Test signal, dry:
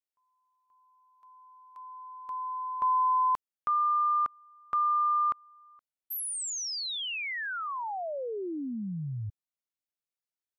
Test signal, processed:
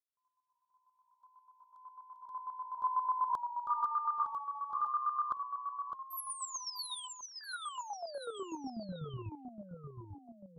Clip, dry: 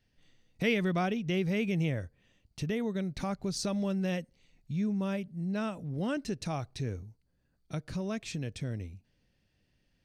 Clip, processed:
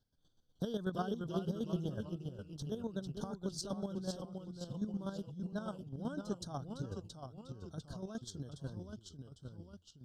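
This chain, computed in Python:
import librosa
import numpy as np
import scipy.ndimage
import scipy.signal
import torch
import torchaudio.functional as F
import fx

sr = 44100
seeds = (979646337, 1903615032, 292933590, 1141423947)

y = fx.chopper(x, sr, hz=8.1, depth_pct=65, duty_pct=25)
y = scipy.signal.sosfilt(scipy.signal.cheby1(4, 1.0, [1600.0, 3200.0], 'bandstop', fs=sr, output='sos'), y)
y = fx.echo_pitch(y, sr, ms=293, semitones=-1, count=3, db_per_echo=-6.0)
y = F.gain(torch.from_numpy(y), -3.5).numpy()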